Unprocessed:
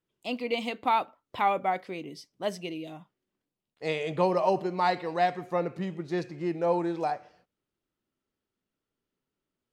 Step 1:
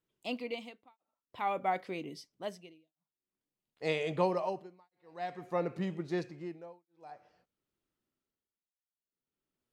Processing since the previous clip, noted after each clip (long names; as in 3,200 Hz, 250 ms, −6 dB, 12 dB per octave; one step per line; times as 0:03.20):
amplitude tremolo 0.51 Hz, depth 100%
level −2 dB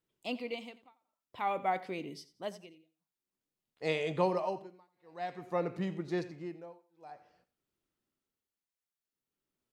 repeating echo 88 ms, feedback 26%, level −17 dB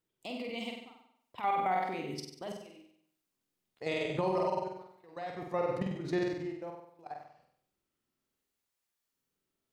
output level in coarse steps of 16 dB
flutter between parallel walls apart 8.2 metres, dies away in 0.69 s
brickwall limiter −30 dBFS, peak gain reduction 11 dB
level +8 dB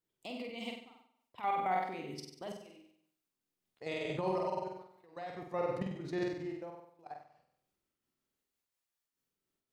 amplitude modulation by smooth noise, depth 60%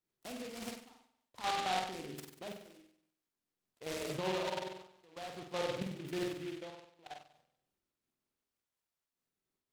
short delay modulated by noise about 2,400 Hz, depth 0.1 ms
level −2 dB